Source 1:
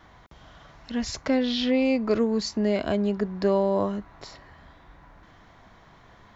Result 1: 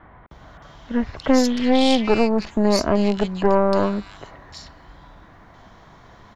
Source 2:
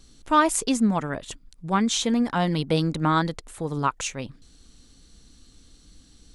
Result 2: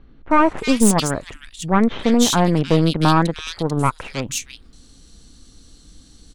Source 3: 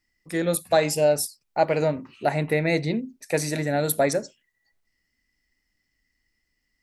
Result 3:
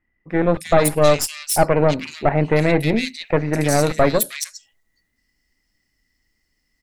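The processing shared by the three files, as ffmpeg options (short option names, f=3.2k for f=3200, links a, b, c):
-filter_complex "[0:a]aeval=exprs='0.422*(cos(1*acos(clip(val(0)/0.422,-1,1)))-cos(1*PI/2))+0.119*(cos(4*acos(clip(val(0)/0.422,-1,1)))-cos(4*PI/2))':c=same,asoftclip=type=tanh:threshold=-9dB,acrossover=split=2300[a][b];[b]adelay=310[c];[a][c]amix=inputs=2:normalize=0,volume=6dB"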